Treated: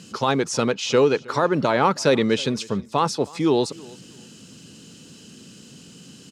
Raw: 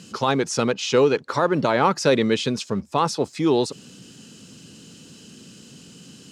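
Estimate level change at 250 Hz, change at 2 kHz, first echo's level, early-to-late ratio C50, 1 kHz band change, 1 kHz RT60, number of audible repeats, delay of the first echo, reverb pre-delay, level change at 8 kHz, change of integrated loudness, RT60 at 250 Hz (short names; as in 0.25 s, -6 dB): 0.0 dB, 0.0 dB, -23.0 dB, none, 0.0 dB, none, 2, 0.317 s, none, 0.0 dB, 0.0 dB, none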